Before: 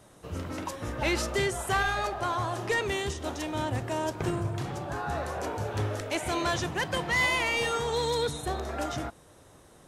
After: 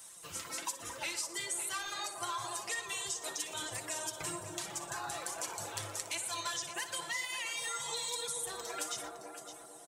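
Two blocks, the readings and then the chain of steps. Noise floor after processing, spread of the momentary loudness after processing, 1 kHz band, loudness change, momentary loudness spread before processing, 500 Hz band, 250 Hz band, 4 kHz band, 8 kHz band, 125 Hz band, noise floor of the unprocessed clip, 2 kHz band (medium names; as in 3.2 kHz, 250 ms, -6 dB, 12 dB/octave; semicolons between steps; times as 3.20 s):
-52 dBFS, 4 LU, -10.0 dB, -7.5 dB, 8 LU, -15.5 dB, -17.0 dB, -4.0 dB, +4.0 dB, -21.0 dB, -55 dBFS, -10.0 dB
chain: flange 1.1 Hz, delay 3.6 ms, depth 5.3 ms, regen +47%; reverb removal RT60 1.3 s; in parallel at +1 dB: gain riding within 5 dB 0.5 s; on the sum: pre-emphasis filter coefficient 0.97; comb 5.9 ms, depth 48%; on a send: feedback echo behind a band-pass 225 ms, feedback 67%, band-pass 400 Hz, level -3.5 dB; on the sum: compression, threshold -41 dBFS, peak gain reduction 11 dB; graphic EQ with 31 bands 100 Hz +10 dB, 1 kHz +4 dB, 8 kHz +5 dB, 12.5 kHz -6 dB; multi-tap echo 60/120/562 ms -13/-16.5/-11.5 dB; trim +5 dB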